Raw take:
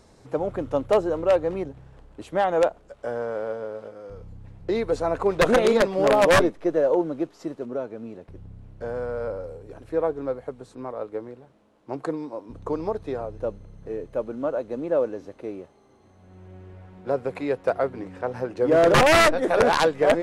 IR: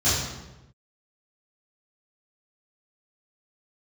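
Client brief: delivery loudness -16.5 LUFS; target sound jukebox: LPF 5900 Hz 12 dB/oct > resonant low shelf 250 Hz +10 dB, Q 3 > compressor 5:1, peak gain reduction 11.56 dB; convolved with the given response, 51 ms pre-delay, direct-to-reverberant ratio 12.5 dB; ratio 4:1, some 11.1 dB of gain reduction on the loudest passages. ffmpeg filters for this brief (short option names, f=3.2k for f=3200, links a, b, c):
-filter_complex "[0:a]acompressor=threshold=-28dB:ratio=4,asplit=2[a][b];[1:a]atrim=start_sample=2205,adelay=51[c];[b][c]afir=irnorm=-1:irlink=0,volume=-28dB[d];[a][d]amix=inputs=2:normalize=0,lowpass=5.9k,lowshelf=f=250:t=q:w=3:g=10,acompressor=threshold=-29dB:ratio=5,volume=18dB"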